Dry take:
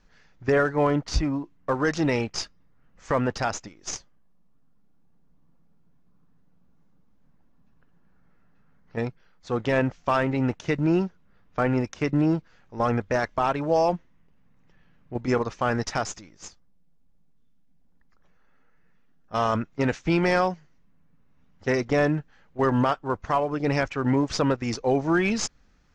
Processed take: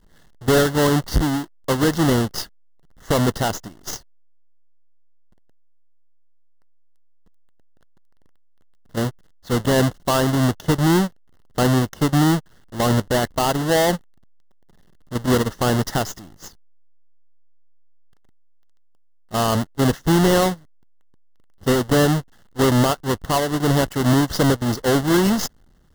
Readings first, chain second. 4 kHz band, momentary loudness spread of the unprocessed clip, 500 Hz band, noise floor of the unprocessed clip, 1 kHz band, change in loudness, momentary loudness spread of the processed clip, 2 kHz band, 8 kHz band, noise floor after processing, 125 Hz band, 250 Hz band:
+10.5 dB, 12 LU, +4.0 dB, -59 dBFS, +3.5 dB, +5.5 dB, 12 LU, +3.0 dB, +9.5 dB, -52 dBFS, +8.0 dB, +6.0 dB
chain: half-waves squared off; Butterworth band-stop 2400 Hz, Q 4; bell 160 Hz +2.5 dB 2 oct

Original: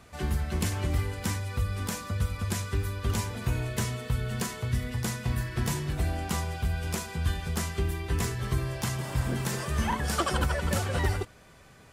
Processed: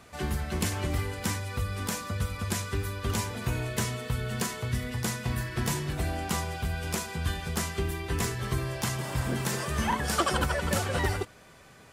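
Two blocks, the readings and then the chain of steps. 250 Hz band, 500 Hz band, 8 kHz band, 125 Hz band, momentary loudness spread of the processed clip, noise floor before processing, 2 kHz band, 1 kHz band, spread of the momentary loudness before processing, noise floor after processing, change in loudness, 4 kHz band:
+0.5 dB, +1.5 dB, +2.0 dB, -2.0 dB, 5 LU, -54 dBFS, +2.0 dB, +2.0 dB, 4 LU, -53 dBFS, 0.0 dB, +2.0 dB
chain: low shelf 110 Hz -7.5 dB; gain +2 dB

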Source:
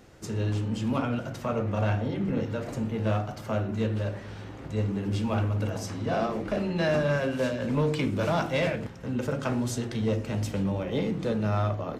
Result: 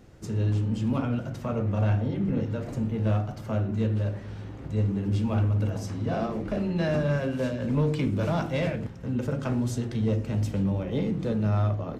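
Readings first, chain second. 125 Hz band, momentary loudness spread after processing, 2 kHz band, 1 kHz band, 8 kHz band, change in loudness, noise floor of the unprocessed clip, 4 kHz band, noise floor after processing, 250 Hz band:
+3.5 dB, 6 LU, -4.0 dB, -3.5 dB, n/a, +1.0 dB, -41 dBFS, -4.5 dB, -40 dBFS, +1.5 dB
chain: low shelf 320 Hz +9 dB; gain -4.5 dB

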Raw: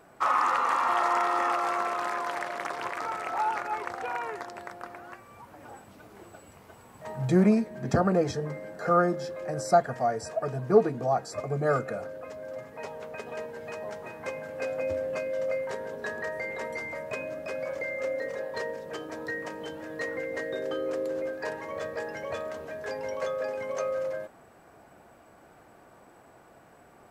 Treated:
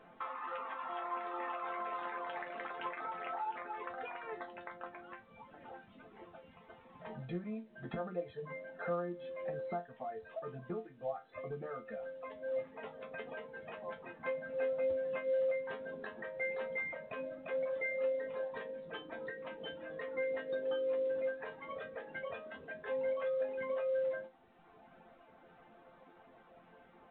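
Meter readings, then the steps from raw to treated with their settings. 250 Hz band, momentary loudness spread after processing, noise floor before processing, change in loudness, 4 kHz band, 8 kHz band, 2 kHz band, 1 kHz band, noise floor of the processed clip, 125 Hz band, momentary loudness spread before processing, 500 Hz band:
-16.5 dB, 13 LU, -55 dBFS, -10.0 dB, -10.5 dB, under -35 dB, -8.5 dB, -14.0 dB, -62 dBFS, -17.0 dB, 16 LU, -7.5 dB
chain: reverb removal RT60 1.3 s; compressor 16:1, threshold -35 dBFS, peak gain reduction 22.5 dB; resonator bank F3 major, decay 0.2 s; gain +11 dB; µ-law 64 kbps 8000 Hz

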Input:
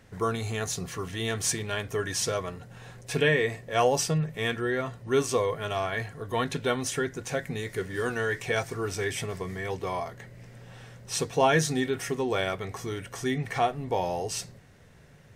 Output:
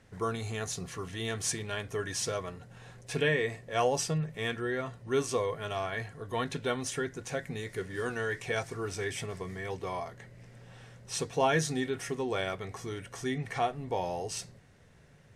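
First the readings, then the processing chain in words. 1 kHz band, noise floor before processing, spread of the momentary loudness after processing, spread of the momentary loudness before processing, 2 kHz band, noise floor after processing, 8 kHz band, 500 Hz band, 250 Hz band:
-4.5 dB, -53 dBFS, 11 LU, 11 LU, -4.5 dB, -58 dBFS, -4.5 dB, -4.5 dB, -4.5 dB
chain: LPF 12000 Hz 24 dB/oct; gain -4.5 dB

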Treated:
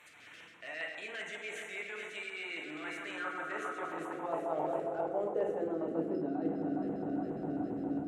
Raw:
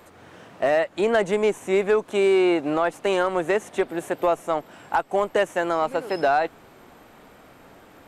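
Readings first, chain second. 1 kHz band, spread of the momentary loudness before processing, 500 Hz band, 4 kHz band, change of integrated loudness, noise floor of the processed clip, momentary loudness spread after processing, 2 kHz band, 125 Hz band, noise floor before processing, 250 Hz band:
-14.5 dB, 7 LU, -15.5 dB, -12.0 dB, -14.0 dB, -55 dBFS, 6 LU, -11.0 dB, -8.0 dB, -51 dBFS, -8.5 dB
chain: regenerating reverse delay 0.209 s, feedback 83%, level -10.5 dB; reverse; compressor 12:1, threshold -32 dBFS, peak gain reduction 18 dB; reverse; tone controls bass +13 dB, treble +14 dB; FDN reverb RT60 1.6 s, low-frequency decay 1.05×, high-frequency decay 0.45×, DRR 0 dB; LFO notch square 7.4 Hz 920–4900 Hz; AGC gain up to 4 dB; band-pass sweep 2300 Hz -> 260 Hz, 2.74–6.4

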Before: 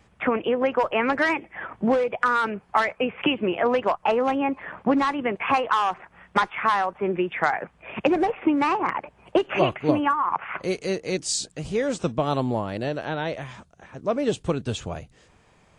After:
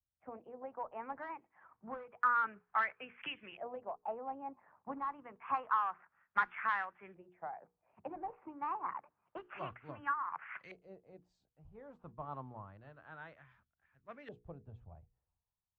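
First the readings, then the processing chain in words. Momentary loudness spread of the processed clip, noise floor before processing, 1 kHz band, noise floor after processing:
20 LU, -59 dBFS, -13.5 dB, under -85 dBFS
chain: passive tone stack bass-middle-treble 5-5-5; notches 60/120/180/240/300/360/420/480 Hz; LFO low-pass saw up 0.28 Hz 640–1900 Hz; three-band expander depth 70%; gain -7 dB

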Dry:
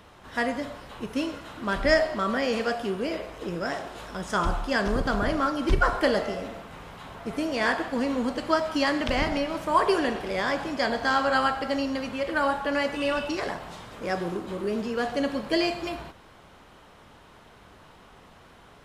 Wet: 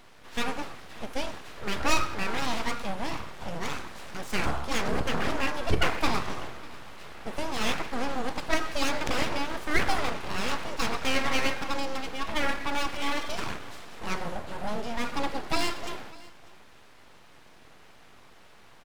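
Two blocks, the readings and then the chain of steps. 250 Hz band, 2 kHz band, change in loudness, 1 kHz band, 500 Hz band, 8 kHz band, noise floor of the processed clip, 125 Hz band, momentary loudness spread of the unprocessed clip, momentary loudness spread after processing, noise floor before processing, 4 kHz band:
-6.5 dB, -3.0 dB, -4.0 dB, -3.5 dB, -7.5 dB, +6.0 dB, -52 dBFS, -1.0 dB, 12 LU, 12 LU, -52 dBFS, +0.5 dB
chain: full-wave rectifier; echo 0.595 s -22 dB

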